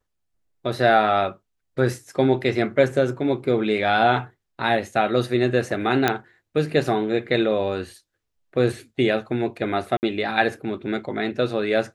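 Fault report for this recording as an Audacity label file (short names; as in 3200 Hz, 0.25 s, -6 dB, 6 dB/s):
6.080000	6.080000	pop -5 dBFS
9.970000	10.030000	gap 59 ms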